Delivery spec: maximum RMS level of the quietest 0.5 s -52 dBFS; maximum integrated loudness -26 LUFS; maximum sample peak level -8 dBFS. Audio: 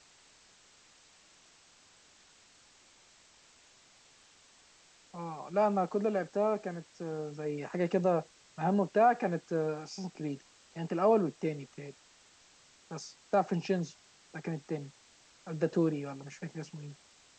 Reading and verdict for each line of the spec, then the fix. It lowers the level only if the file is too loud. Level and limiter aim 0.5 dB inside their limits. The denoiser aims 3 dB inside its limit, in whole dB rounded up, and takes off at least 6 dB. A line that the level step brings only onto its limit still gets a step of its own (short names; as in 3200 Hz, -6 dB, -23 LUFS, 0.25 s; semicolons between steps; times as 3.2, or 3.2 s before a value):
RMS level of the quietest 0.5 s -62 dBFS: OK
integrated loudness -33.0 LUFS: OK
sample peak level -15.0 dBFS: OK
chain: none